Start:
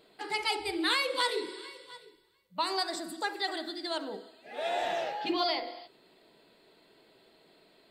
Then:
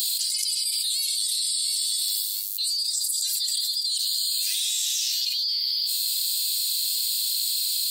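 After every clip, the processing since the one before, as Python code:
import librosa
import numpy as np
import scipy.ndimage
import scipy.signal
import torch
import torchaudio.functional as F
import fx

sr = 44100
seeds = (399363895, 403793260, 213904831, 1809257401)

y = scipy.signal.sosfilt(scipy.signal.cheby2(4, 70, 1100.0, 'highpass', fs=sr, output='sos'), x)
y = fx.tilt_eq(y, sr, slope=4.0)
y = fx.env_flatten(y, sr, amount_pct=100)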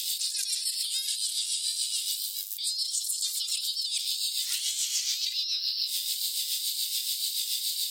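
y = fx.peak_eq(x, sr, hz=6100.0, db=3.5, octaves=0.55)
y = fx.rotary(y, sr, hz=7.0)
y = fx.ring_lfo(y, sr, carrier_hz=500.0, swing_pct=25, hz=2.0)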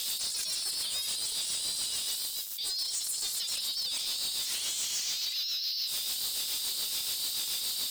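y = 10.0 ** (-30.0 / 20.0) * np.tanh(x / 10.0 ** (-30.0 / 20.0))
y = y * librosa.db_to_amplitude(2.0)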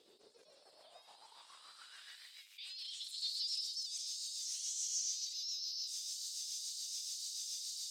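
y = fx.filter_sweep_bandpass(x, sr, from_hz=400.0, to_hz=6100.0, start_s=0.19, end_s=3.78, q=5.4)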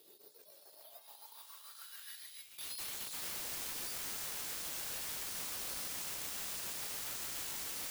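y = (np.mod(10.0 ** (42.0 / 20.0) * x + 1.0, 2.0) - 1.0) / 10.0 ** (42.0 / 20.0)
y = fx.notch_comb(y, sr, f0_hz=250.0)
y = (np.kron(y[::3], np.eye(3)[0]) * 3)[:len(y)]
y = y * librosa.db_to_amplitude(1.5)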